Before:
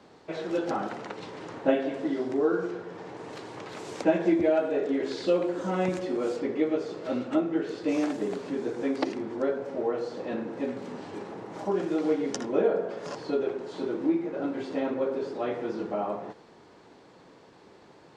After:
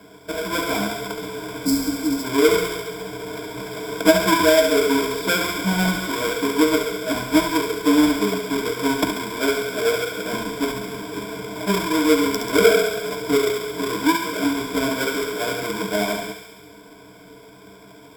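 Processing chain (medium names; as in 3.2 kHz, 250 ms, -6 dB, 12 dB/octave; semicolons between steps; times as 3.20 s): square wave that keeps the level; spectral replace 1.62–2.21 s, 340–3900 Hz before; rippled EQ curve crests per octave 1.7, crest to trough 18 dB; thinning echo 69 ms, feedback 72%, high-pass 710 Hz, level -7 dB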